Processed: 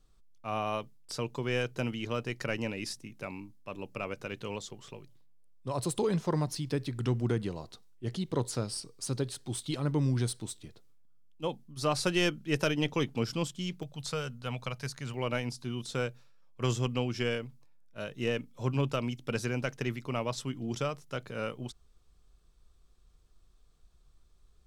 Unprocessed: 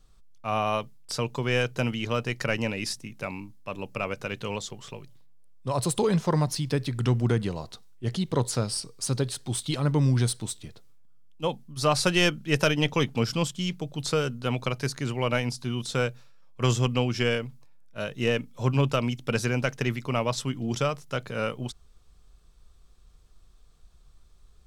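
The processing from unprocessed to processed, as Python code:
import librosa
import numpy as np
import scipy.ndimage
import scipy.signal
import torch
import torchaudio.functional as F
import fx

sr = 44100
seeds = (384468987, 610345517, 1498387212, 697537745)

y = fx.peak_eq(x, sr, hz=330.0, db=fx.steps((0.0, 4.5), (13.83, -9.0), (15.14, 3.0)), octaves=0.77)
y = y * librosa.db_to_amplitude(-7.0)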